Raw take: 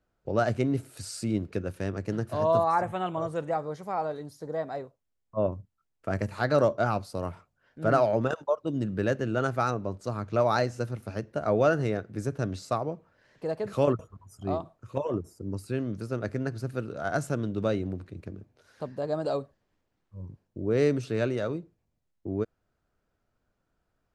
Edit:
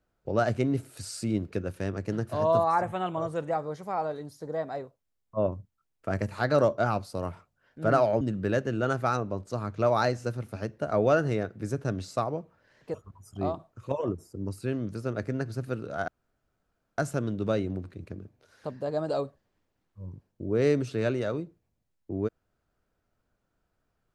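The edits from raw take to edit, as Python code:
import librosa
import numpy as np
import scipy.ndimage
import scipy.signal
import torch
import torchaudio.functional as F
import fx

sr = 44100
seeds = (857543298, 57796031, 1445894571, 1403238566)

y = fx.edit(x, sr, fx.cut(start_s=8.21, length_s=0.54),
    fx.cut(start_s=13.48, length_s=0.52),
    fx.insert_room_tone(at_s=17.14, length_s=0.9), tone=tone)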